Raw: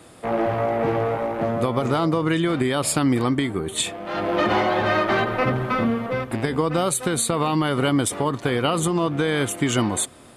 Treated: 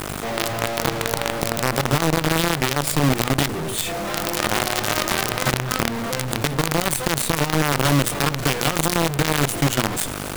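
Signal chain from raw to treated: peaking EQ 140 Hz +12.5 dB 0.38 oct; hum notches 60/120/180/240/300/360/420/480/540/600 Hz; in parallel at -12 dB: integer overflow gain 16.5 dB; on the sum: mains buzz 50 Hz, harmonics 31, -41 dBFS -2 dB/octave; Chebyshev shaper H 4 -37 dB, 7 -41 dB, 8 -21 dB, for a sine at -5.5 dBFS; companded quantiser 2-bit; level flattener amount 50%; trim -11.5 dB

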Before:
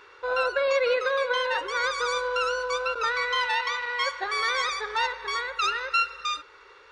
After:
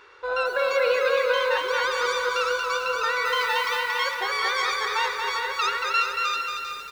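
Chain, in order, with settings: de-hum 108.1 Hz, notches 7; 3.25–3.80 s: word length cut 8-bit, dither triangular; delay 395 ms -8.5 dB; bit-crushed delay 230 ms, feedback 55%, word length 8-bit, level -4 dB

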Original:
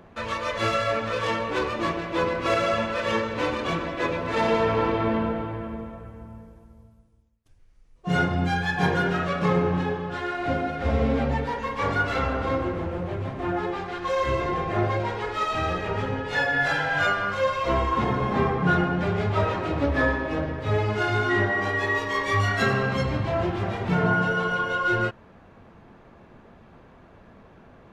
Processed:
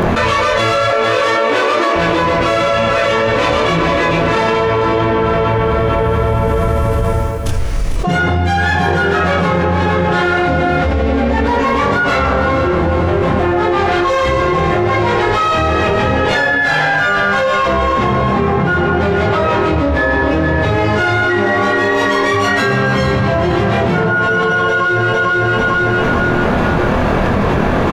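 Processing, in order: 0.90–1.95 s: steep high-pass 240 Hz 72 dB/octave; doubling 25 ms -2.5 dB; on a send: feedback delay 449 ms, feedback 34%, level -10 dB; on the sum: level flattener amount 100%; trim +2.5 dB

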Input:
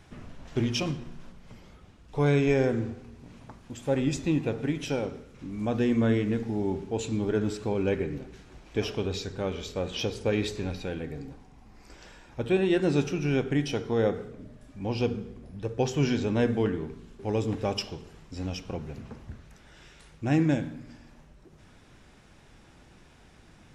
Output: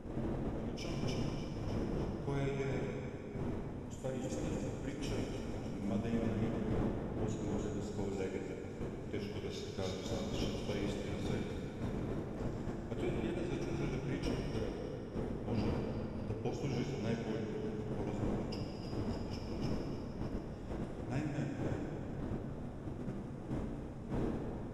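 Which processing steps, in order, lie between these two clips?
wind noise 320 Hz -24 dBFS; compression 16:1, threshold -29 dBFS, peak gain reduction 23 dB; two-band feedback delay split 310 Hz, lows 414 ms, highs 291 ms, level -6.5 dB; gate -31 dBFS, range -10 dB; treble shelf 5.9 kHz +10.5 dB; band-stop 4.6 kHz, Q 8.6; plate-style reverb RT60 3 s, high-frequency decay 0.75×, DRR -0.5 dB; speed mistake 25 fps video run at 24 fps; trim -6.5 dB

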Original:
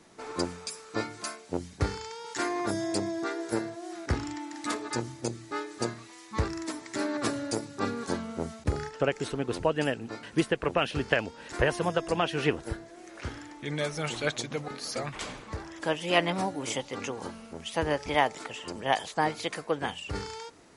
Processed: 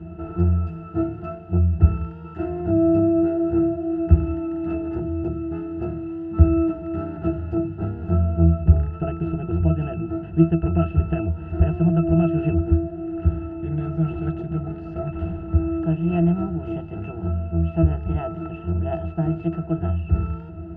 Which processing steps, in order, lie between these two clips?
spectral levelling over time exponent 0.6; tone controls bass +14 dB, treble -14 dB; pitch-class resonator E, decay 0.19 s; trim +7 dB

